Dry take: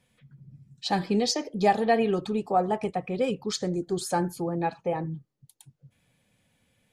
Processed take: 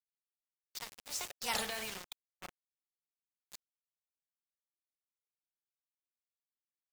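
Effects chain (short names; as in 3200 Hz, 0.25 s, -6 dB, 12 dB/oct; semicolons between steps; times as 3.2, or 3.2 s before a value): gliding pitch shift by +4.5 st starting unshifted; Doppler pass-by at 1.56, 39 m/s, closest 2.5 m; passive tone stack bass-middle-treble 10-0-10; notches 50/100/150/200/250/300/350/400/450/500 Hz; transient shaper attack +1 dB, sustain +7 dB; sample gate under -53 dBFS; spectral compressor 2:1; gain +1 dB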